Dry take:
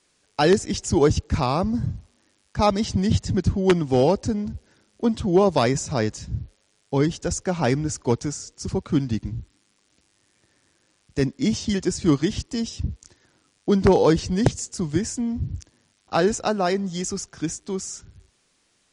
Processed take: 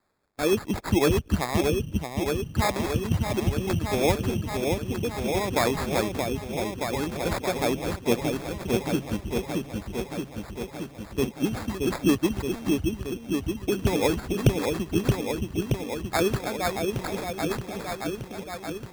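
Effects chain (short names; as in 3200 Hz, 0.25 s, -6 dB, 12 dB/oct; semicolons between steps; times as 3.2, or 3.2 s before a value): rotary speaker horn 0.65 Hz, later 8 Hz, at 11.41; harmonic-percussive split harmonic -13 dB; on a send: repeats that get brighter 0.624 s, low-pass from 750 Hz, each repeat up 1 oct, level -3 dB; on the sum: sample-and-hold 15×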